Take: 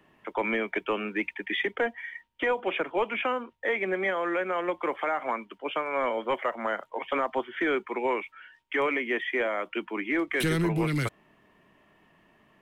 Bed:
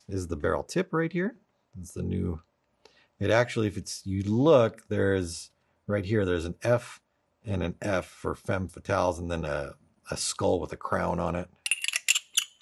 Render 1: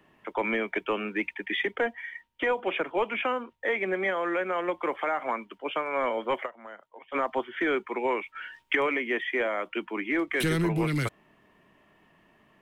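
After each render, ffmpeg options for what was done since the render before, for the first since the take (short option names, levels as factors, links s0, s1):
-filter_complex "[0:a]asplit=5[s0][s1][s2][s3][s4];[s0]atrim=end=6.57,asetpts=PTS-STARTPTS,afade=t=out:st=6.45:d=0.12:c=exp:silence=0.188365[s5];[s1]atrim=start=6.57:end=7.03,asetpts=PTS-STARTPTS,volume=0.188[s6];[s2]atrim=start=7.03:end=8.352,asetpts=PTS-STARTPTS,afade=t=in:d=0.12:c=exp:silence=0.188365[s7];[s3]atrim=start=8.348:end=8.752,asetpts=PTS-STARTPTS,volume=2.82[s8];[s4]atrim=start=8.748[s9];[s5][s6][s7]concat=n=3:v=0:a=1[s10];[s10][s8]acrossfade=d=0.004:c1=hsin:c2=hsin[s11];[s11][s9]acrossfade=d=0.004:c1=hsin:c2=hsin"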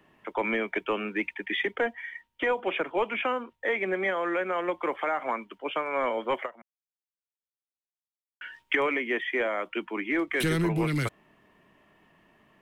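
-filter_complex "[0:a]asplit=3[s0][s1][s2];[s0]atrim=end=6.62,asetpts=PTS-STARTPTS,afade=t=out:st=6.616:d=0.004:c=hsin[s3];[s1]atrim=start=6.62:end=8.41,asetpts=PTS-STARTPTS,volume=0[s4];[s2]atrim=start=8.41,asetpts=PTS-STARTPTS,afade=t=in:d=0.004:c=hsin[s5];[s3][s4][s5]concat=n=3:v=0:a=1"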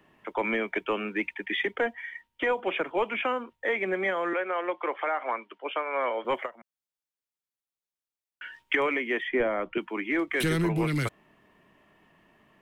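-filter_complex "[0:a]asettb=1/sr,asplit=3[s0][s1][s2];[s0]atrim=end=4.334[s3];[s1]atrim=start=4.33:end=6.25,asetpts=PTS-STARTPTS,afade=t=in:d=0.004:c=qsin,afade=t=out:st=1.916:d=0.004:c=qsin,acrossover=split=300 4500:gain=0.0891 1 0.158[s4][s5][s6];[s4][s5][s6]amix=inputs=3:normalize=0[s7];[s2]atrim=start=6.246[s8];[s3][s7]acrossfade=d=0.004:c1=hsin:c2=qsin[s9];[s9][s8]acrossfade=d=0.004:c1=qsin:c2=hsin,asettb=1/sr,asplit=3[s10][s11][s12];[s10]atrim=end=9.284[s13];[s11]atrim=start=9.28:end=9.78,asetpts=PTS-STARTPTS,afade=t=in:d=0.004:c=qsin,afade=t=out:st=0.496:d=0.004:c=qsin,aemphasis=mode=reproduction:type=riaa[s14];[s12]atrim=start=9.776[s15];[s13][s14]acrossfade=d=0.004:c1=hsin:c2=qsin[s16];[s16][s15]acrossfade=d=0.004:c1=qsin:c2=hsin"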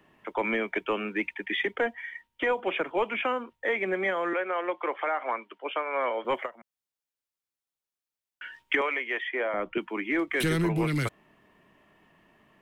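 -filter_complex "[0:a]asettb=1/sr,asplit=3[s0][s1][s2];[s0]atrim=end=8.814[s3];[s1]atrim=start=8.81:end=9.54,asetpts=PTS-STARTPTS,afade=t=in:d=0.004:c=qsin,afade=t=out:st=0.726:d=0.004:c=qsin,highpass=550,lowpass=6600[s4];[s2]atrim=start=9.536[s5];[s3][s4]acrossfade=d=0.004:c1=hsin:c2=qsin[s6];[s6][s5]acrossfade=d=0.004:c1=qsin:c2=hsin"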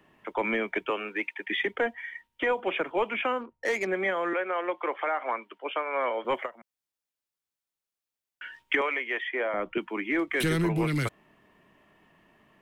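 -filter_complex "[0:a]asettb=1/sr,asplit=3[s0][s1][s2];[s0]atrim=end=0.904[s3];[s1]atrim=start=0.9:end=1.47,asetpts=PTS-STARTPTS,afade=t=in:d=0.004:c=qsin,afade=t=out:st=0.566:d=0.004:c=qsin,highpass=370[s4];[s2]atrim=start=1.466[s5];[s3][s4]acrossfade=d=0.004:c1=hsin:c2=qsin[s6];[s6][s5]acrossfade=d=0.004:c1=qsin:c2=hsin,asettb=1/sr,asplit=3[s7][s8][s9];[s7]atrim=end=3.414[s10];[s8]atrim=start=3.41:end=3.87,asetpts=PTS-STARTPTS,afade=t=in:d=0.004:c=qsin,afade=t=out:st=0.456:d=0.004:c=qsin,adynamicsmooth=sensitivity=4.5:basefreq=1100[s11];[s9]atrim=start=3.866[s12];[s10][s11]acrossfade=d=0.004:c1=hsin:c2=qsin[s13];[s13][s12]acrossfade=d=0.004:c1=qsin:c2=hsin"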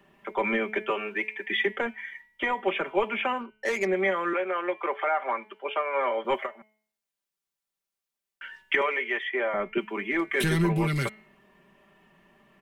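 -af "aecho=1:1:5.1:0.67,bandreject=f=215:t=h:w=4,bandreject=f=430:t=h:w=4,bandreject=f=645:t=h:w=4,bandreject=f=860:t=h:w=4,bandreject=f=1075:t=h:w=4,bandreject=f=1290:t=h:w=4,bandreject=f=1505:t=h:w=4,bandreject=f=1720:t=h:w=4,bandreject=f=1935:t=h:w=4,bandreject=f=2150:t=h:w=4,bandreject=f=2365:t=h:w=4,bandreject=f=2580:t=h:w=4,bandreject=f=2795:t=h:w=4,bandreject=f=3010:t=h:w=4,bandreject=f=3225:t=h:w=4,bandreject=f=3440:t=h:w=4,bandreject=f=3655:t=h:w=4,bandreject=f=3870:t=h:w=4,bandreject=f=4085:t=h:w=4,bandreject=f=4300:t=h:w=4"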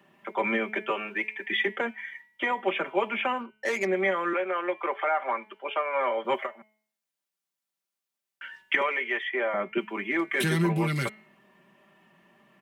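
-af "highpass=120,bandreject=f=420:w=12"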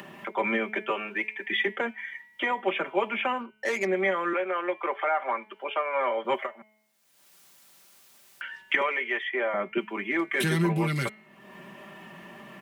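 -af "acompressor=mode=upward:threshold=0.0251:ratio=2.5"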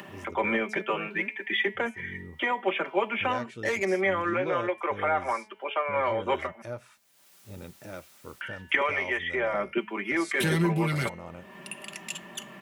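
-filter_complex "[1:a]volume=0.211[s0];[0:a][s0]amix=inputs=2:normalize=0"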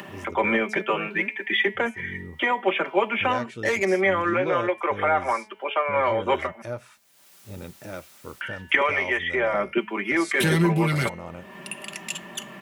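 -af "volume=1.68"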